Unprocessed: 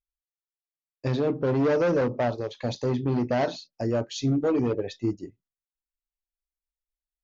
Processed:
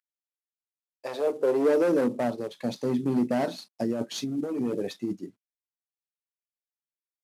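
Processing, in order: CVSD 64 kbps; 3.58–5.13 negative-ratio compressor -28 dBFS, ratio -1; high-pass sweep 1700 Hz -> 200 Hz, 0.18–2.22; gain -3.5 dB

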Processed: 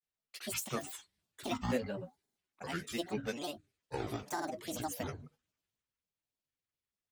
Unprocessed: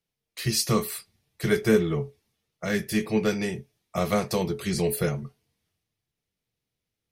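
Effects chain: grains, grains 20/s, spray 35 ms, pitch spread up and down by 12 st; low shelf 350 Hz -7 dB; gain -8.5 dB

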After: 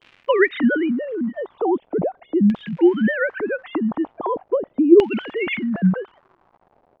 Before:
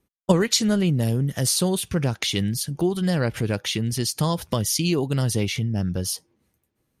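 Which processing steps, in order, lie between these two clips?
sine-wave speech; crackle 210/s -37 dBFS; LFO low-pass saw down 0.4 Hz 440–2900 Hz; gain +1.5 dB

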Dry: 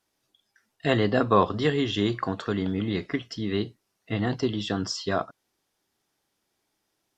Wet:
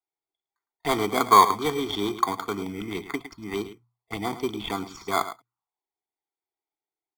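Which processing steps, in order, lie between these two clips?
Wiener smoothing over 15 samples; gate -43 dBFS, range -15 dB; three-band isolator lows -23 dB, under 430 Hz, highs -17 dB, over 3300 Hz; on a send: echo 0.108 s -13 dB; on the sum: envelope phaser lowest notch 200 Hz, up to 2400 Hz, full sweep at -32 dBFS; high shelf 3000 Hz +8.5 dB; in parallel at -4 dB: sample-and-hold 16×; on the sum: notches 60/120 Hz; comb 0.9 ms, depth 98%; gain +3 dB

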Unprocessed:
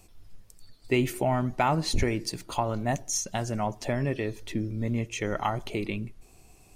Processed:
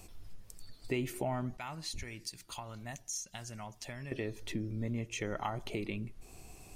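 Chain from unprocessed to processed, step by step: 1.57–4.12 passive tone stack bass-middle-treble 5-5-5; compressor 2:1, threshold -45 dBFS, peak gain reduction 13.5 dB; gain +3 dB

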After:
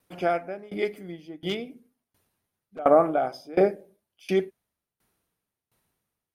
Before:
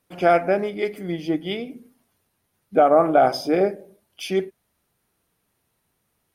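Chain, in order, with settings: 1.46–2.79 hard clip -19.5 dBFS, distortion -22 dB; dB-ramp tremolo decaying 1.4 Hz, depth 23 dB; gain +1.5 dB

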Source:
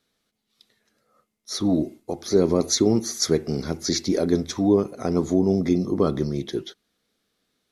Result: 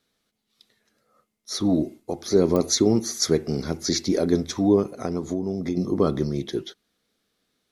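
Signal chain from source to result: 4.97–5.77 compressor 6:1, threshold -23 dBFS, peak gain reduction 8.5 dB; pops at 2.56, -13 dBFS

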